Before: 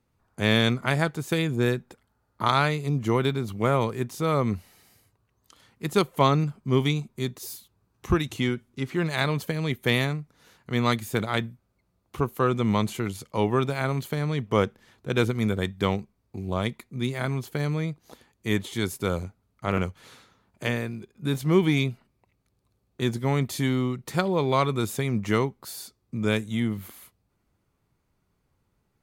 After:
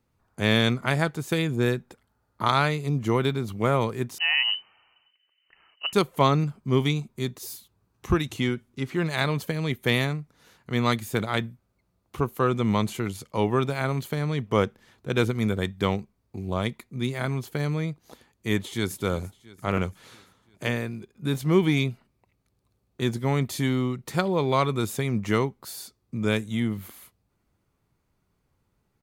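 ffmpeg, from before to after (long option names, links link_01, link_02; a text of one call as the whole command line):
ffmpeg -i in.wav -filter_complex "[0:a]asettb=1/sr,asplit=3[link_01][link_02][link_03];[link_01]atrim=end=4.184[link_04];[link_02]atrim=start=4.18:end=5.93,asetpts=PTS-STARTPTS,afade=type=in:duration=0.004:curve=qsin,afade=type=out:start_time=1.746:duration=0.004:curve=qsin,lowpass=frequency=2600:width_type=q:width=0.5098,lowpass=frequency=2600:width_type=q:width=0.6013,lowpass=frequency=2600:width_type=q:width=0.9,lowpass=frequency=2600:width_type=q:width=2.563,afreqshift=-3100[link_05];[link_03]atrim=start=5.926[link_06];[link_04][link_05]acrossfade=duration=0.004:curve1=hsin:curve2=qsin[link_07];[link_07][link_06]acrossfade=duration=0.004:curve1=qsin:curve2=hsin,asplit=2[link_08][link_09];[link_09]afade=type=in:start_time=18.56:duration=0.01,afade=type=out:start_time=19:duration=0.01,aecho=0:1:340|680|1020|1360|1700|2040:0.133352|0.0800113|0.0480068|0.0288041|0.0172824|0.0103695[link_10];[link_08][link_10]amix=inputs=2:normalize=0" out.wav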